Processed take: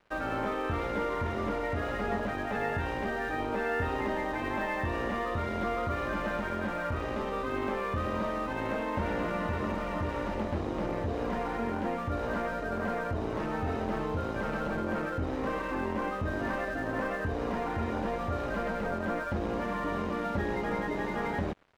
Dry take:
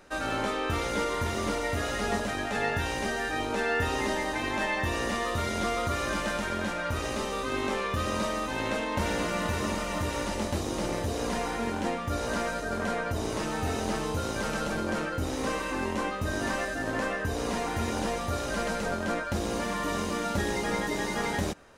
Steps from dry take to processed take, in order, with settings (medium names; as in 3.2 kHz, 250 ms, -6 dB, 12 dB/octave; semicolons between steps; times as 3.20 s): low-pass 1.9 kHz 12 dB/octave; in parallel at +1.5 dB: peak limiter -27.5 dBFS, peak gain reduction 10 dB; on the sum: crossover distortion -45.5 dBFS; trim -5 dB